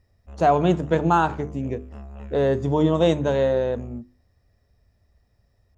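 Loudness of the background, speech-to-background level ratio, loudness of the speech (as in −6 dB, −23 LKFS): −40.0 LKFS, 18.0 dB, −22.0 LKFS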